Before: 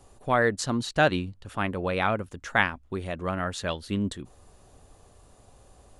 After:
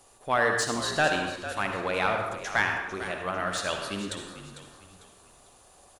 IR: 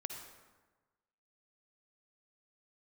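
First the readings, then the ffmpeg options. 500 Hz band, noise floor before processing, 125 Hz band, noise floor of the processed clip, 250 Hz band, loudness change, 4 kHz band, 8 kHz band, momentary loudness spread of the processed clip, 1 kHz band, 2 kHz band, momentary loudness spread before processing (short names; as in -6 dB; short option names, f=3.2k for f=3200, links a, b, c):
-1.5 dB, -57 dBFS, -7.5 dB, -57 dBFS, -6.0 dB, -0.5 dB, +2.5 dB, +4.0 dB, 12 LU, 0.0 dB, +1.0 dB, 9 LU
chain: -filter_complex "[0:a]aemphasis=mode=production:type=75fm,asplit=2[a][b];[b]highpass=f=720:p=1,volume=15dB,asoftclip=type=tanh:threshold=-2.5dB[c];[a][c]amix=inputs=2:normalize=0,lowpass=f=2.5k:p=1,volume=-6dB,asplit=5[d][e][f][g][h];[e]adelay=449,afreqshift=-56,volume=-12.5dB[i];[f]adelay=898,afreqshift=-112,volume=-21.1dB[j];[g]adelay=1347,afreqshift=-168,volume=-29.8dB[k];[h]adelay=1796,afreqshift=-224,volume=-38.4dB[l];[d][i][j][k][l]amix=inputs=5:normalize=0[m];[1:a]atrim=start_sample=2205,afade=t=out:st=0.35:d=0.01,atrim=end_sample=15876[n];[m][n]afir=irnorm=-1:irlink=0,volume=-4.5dB"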